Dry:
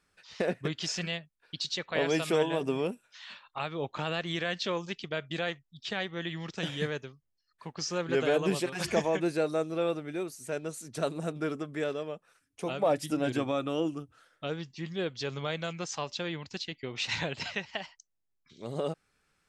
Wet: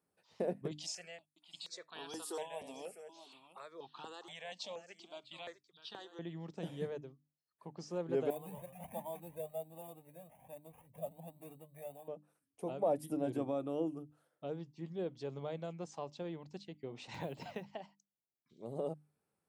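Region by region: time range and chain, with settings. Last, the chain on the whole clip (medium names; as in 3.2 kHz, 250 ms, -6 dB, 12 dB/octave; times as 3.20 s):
0.71–6.19 s: frequency weighting ITU-R 468 + delay 652 ms -13 dB + stepped phaser 4.2 Hz 380–2100 Hz
8.30–12.08 s: sample-rate reducer 4.1 kHz + static phaser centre 1.4 kHz, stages 6 + Shepard-style flanger rising 1.3 Hz
17.14–17.69 s: block-companded coder 7-bit + three bands compressed up and down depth 100%
whole clip: high-pass 120 Hz; high-order bell 3 kHz -14 dB 2.9 oct; hum notches 50/100/150/200/250/300 Hz; trim -5.5 dB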